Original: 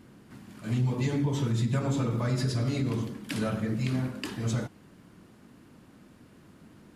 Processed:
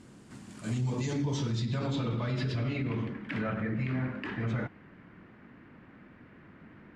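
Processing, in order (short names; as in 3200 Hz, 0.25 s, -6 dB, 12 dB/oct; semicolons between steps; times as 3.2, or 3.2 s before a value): low-pass sweep 8100 Hz -> 2000 Hz, 0.69–3.18; limiter -24 dBFS, peak gain reduction 7 dB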